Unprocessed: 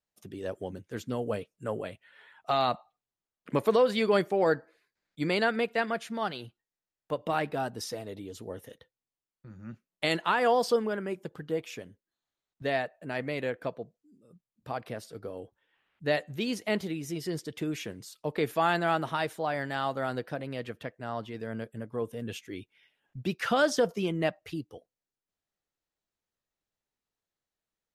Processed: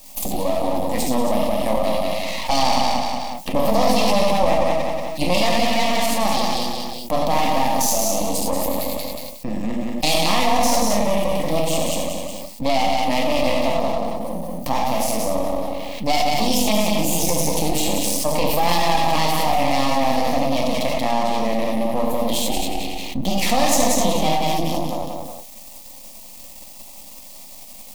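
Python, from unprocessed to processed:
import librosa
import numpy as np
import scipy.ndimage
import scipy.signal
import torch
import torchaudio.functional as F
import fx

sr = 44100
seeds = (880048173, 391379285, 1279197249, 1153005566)

y = fx.high_shelf(x, sr, hz=9200.0, db=9.5)
y = fx.notch(y, sr, hz=3000.0, q=12.0)
y = fx.rev_gated(y, sr, seeds[0], gate_ms=130, shape='flat', drr_db=-2.0)
y = fx.formant_shift(y, sr, semitones=3)
y = fx.echo_feedback(y, sr, ms=182, feedback_pct=21, wet_db=-5.5)
y = np.maximum(y, 0.0)
y = fx.fixed_phaser(y, sr, hz=400.0, stages=6)
y = fx.env_flatten(y, sr, amount_pct=70)
y = y * librosa.db_to_amplitude(7.0)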